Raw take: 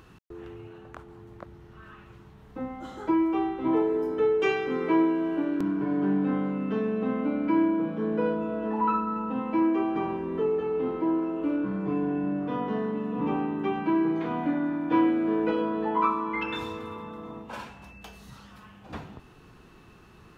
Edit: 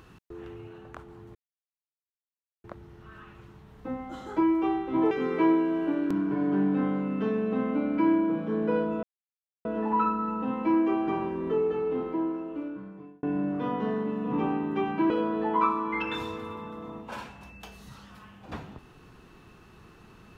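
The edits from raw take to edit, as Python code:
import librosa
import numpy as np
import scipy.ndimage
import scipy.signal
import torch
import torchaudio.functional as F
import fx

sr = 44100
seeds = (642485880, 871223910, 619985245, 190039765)

y = fx.edit(x, sr, fx.insert_silence(at_s=1.35, length_s=1.29),
    fx.cut(start_s=3.82, length_s=0.79),
    fx.insert_silence(at_s=8.53, length_s=0.62),
    fx.fade_out_span(start_s=10.63, length_s=1.48),
    fx.cut(start_s=13.98, length_s=1.53), tone=tone)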